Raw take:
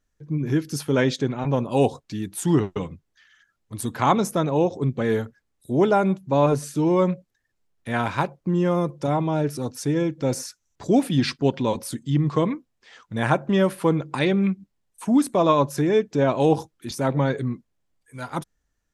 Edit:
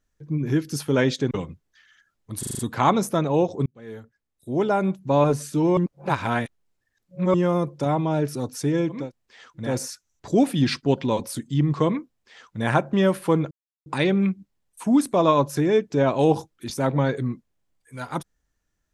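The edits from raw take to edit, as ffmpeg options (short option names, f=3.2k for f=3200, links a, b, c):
-filter_complex "[0:a]asplit=13[a][b][c][d][e][f][g][h][i][j][k][l][m];[a]atrim=end=1.312[n];[b]atrim=start=2.728:end=3.852[o];[c]atrim=start=3.808:end=3.852[p];[d]atrim=start=3.808:end=3.852[q];[e]atrim=start=3.808:end=3.852[r];[f]atrim=start=3.808:end=3.852[s];[g]atrim=start=3.808:end=4.88,asetpts=PTS-STARTPTS,afade=t=out:st=1.068:d=0.004:c=hsin[t];[h]atrim=start=4.88:end=6.992,asetpts=PTS-STARTPTS,afade=t=in:d=1.48[u];[i]atrim=start=6.988:end=8.562,asetpts=PTS-STARTPTS,areverse[v];[j]atrim=start=8.558:end=10.34[w];[k]atrim=start=12.41:end=13.31[x];[l]atrim=start=10.1:end=14.07,asetpts=PTS-STARTPTS,afade=t=out:st=3.966:d=0.004:c=hsin,apad=pad_dur=0.35[y];[m]atrim=start=14.07,asetpts=PTS-STARTPTS,afade=t=in:d=0.004:c=hsin[z];[n][o]acrossfade=d=0.004:c1=hsin:c2=hsin[aa];[aa][p]acrossfade=d=0.004:c1=hsin:c2=hsin[ab];[ab][q]acrossfade=d=0.004:c1=hsin:c2=hsin[ac];[ac][r]acrossfade=d=0.004:c1=hsin:c2=hsin[ad];[ad][s]acrossfade=d=0.004:c1=hsin:c2=hsin[ae];[t][u]concat=n=2:v=0:a=1[af];[ae][af]acrossfade=d=0.004:c1=hsin:c2=hsin[ag];[ag][v]acrossfade=d=0.004:c1=hsin:c2=hsin[ah];[ah][w]acrossfade=d=0.004:c1=hsin:c2=hsin[ai];[ai][x]acrossfade=d=0.24:c1=tri:c2=tri[aj];[y][z]concat=n=2:v=0:a=1[ak];[aj][ak]acrossfade=d=0.24:c1=tri:c2=tri"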